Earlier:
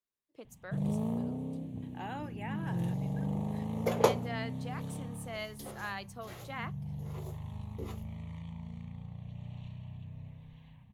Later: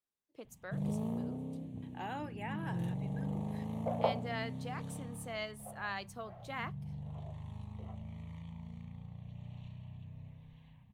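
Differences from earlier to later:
first sound −3.5 dB
second sound: add four-pole ladder band-pass 720 Hz, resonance 75%
reverb: on, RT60 0.50 s

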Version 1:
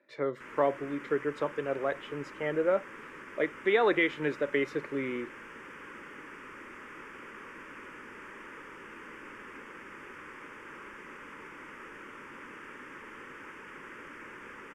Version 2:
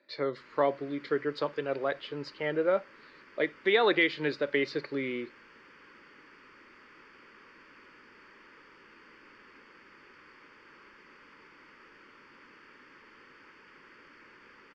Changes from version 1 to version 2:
background −10.0 dB
master: add low-pass with resonance 4,500 Hz, resonance Q 11

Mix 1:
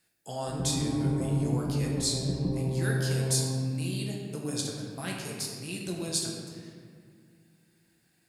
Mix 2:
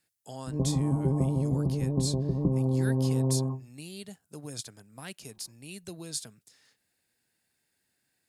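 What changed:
background +7.5 dB
reverb: off

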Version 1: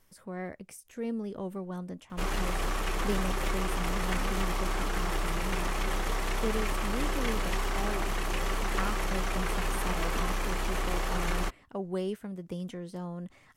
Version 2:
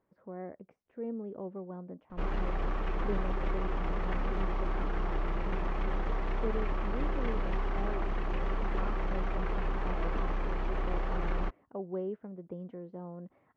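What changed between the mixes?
speech: add resonant band-pass 530 Hz, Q 0.62
master: add head-to-tape spacing loss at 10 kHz 41 dB

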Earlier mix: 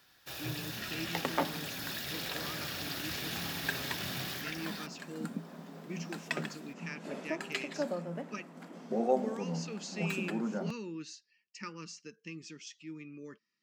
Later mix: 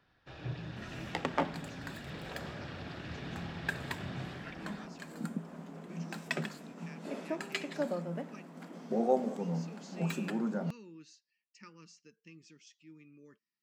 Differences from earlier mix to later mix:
speech −11.0 dB
first sound: add head-to-tape spacing loss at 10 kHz 35 dB
master: add low-shelf EQ 110 Hz +7 dB

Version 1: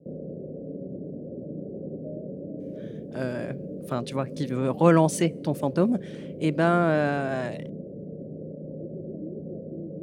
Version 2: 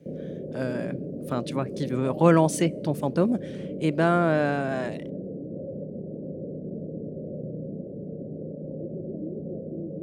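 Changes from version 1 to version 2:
speech: entry −2.60 s
background: send on

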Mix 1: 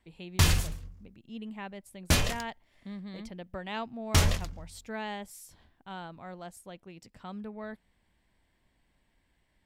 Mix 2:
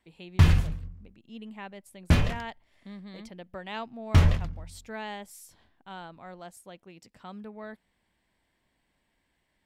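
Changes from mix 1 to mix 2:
background: add bass and treble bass +12 dB, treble −15 dB
master: add low-shelf EQ 120 Hz −9 dB

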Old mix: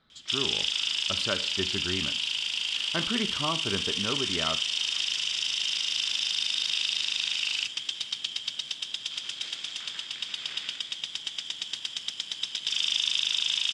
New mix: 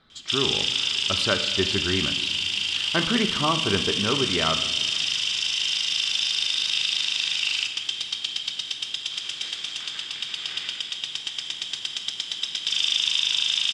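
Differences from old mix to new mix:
speech +5.5 dB
reverb: on, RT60 1.6 s

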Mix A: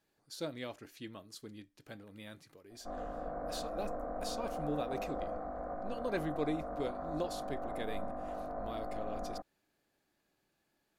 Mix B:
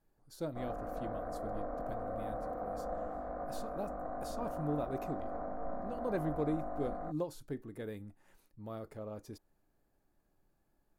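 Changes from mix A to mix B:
speech: remove meter weighting curve D
background: entry −2.30 s

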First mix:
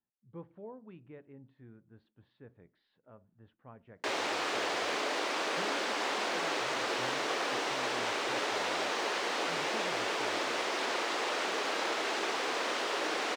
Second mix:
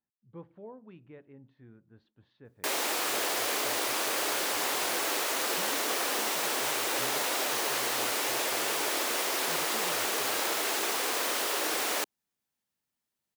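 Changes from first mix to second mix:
background: entry −1.40 s
master: remove high-frequency loss of the air 130 metres

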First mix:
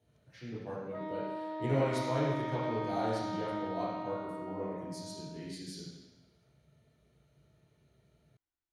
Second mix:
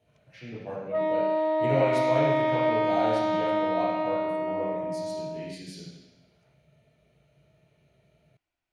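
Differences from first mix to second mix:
background +8.0 dB
master: add graphic EQ with 15 bands 160 Hz +4 dB, 630 Hz +9 dB, 2,500 Hz +10 dB

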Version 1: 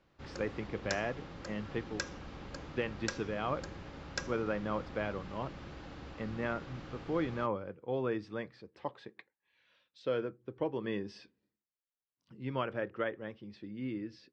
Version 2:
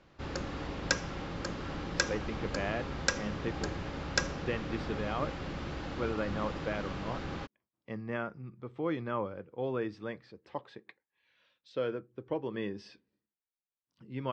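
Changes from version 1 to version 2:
speech: entry +1.70 s
background +8.5 dB

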